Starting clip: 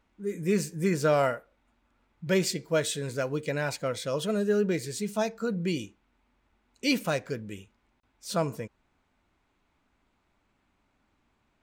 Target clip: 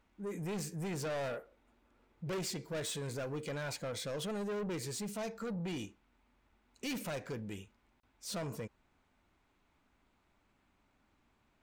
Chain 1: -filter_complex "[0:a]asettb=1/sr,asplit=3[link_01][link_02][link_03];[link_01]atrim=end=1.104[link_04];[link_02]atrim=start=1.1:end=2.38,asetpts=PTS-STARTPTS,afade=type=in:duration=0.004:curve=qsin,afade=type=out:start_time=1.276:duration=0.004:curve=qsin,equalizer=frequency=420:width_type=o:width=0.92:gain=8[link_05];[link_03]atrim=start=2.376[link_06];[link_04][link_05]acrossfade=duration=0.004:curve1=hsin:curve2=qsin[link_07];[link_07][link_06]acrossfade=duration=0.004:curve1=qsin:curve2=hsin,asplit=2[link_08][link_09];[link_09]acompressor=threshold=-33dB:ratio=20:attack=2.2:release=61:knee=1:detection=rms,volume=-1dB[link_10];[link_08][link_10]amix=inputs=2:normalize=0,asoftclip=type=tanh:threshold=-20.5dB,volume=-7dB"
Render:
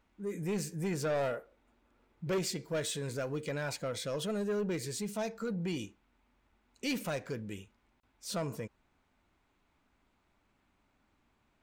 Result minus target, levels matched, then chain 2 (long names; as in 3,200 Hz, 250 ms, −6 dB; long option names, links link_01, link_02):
soft clipping: distortion −5 dB
-filter_complex "[0:a]asettb=1/sr,asplit=3[link_01][link_02][link_03];[link_01]atrim=end=1.104[link_04];[link_02]atrim=start=1.1:end=2.38,asetpts=PTS-STARTPTS,afade=type=in:duration=0.004:curve=qsin,afade=type=out:start_time=1.276:duration=0.004:curve=qsin,equalizer=frequency=420:width_type=o:width=0.92:gain=8[link_05];[link_03]atrim=start=2.376[link_06];[link_04][link_05]acrossfade=duration=0.004:curve1=hsin:curve2=qsin[link_07];[link_07][link_06]acrossfade=duration=0.004:curve1=qsin:curve2=hsin,asplit=2[link_08][link_09];[link_09]acompressor=threshold=-33dB:ratio=20:attack=2.2:release=61:knee=1:detection=rms,volume=-1dB[link_10];[link_08][link_10]amix=inputs=2:normalize=0,asoftclip=type=tanh:threshold=-28dB,volume=-7dB"